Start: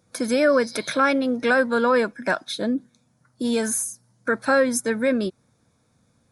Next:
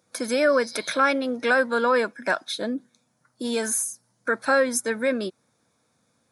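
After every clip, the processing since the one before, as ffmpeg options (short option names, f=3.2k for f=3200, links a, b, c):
-af "highpass=f=380:p=1"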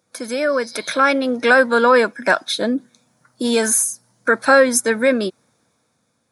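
-af "dynaudnorm=f=220:g=9:m=11.5dB"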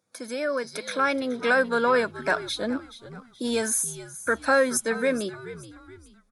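-filter_complex "[0:a]asplit=4[a][b][c][d];[b]adelay=426,afreqshift=-81,volume=-15dB[e];[c]adelay=852,afreqshift=-162,volume=-23.4dB[f];[d]adelay=1278,afreqshift=-243,volume=-31.8dB[g];[a][e][f][g]amix=inputs=4:normalize=0,volume=-8.5dB"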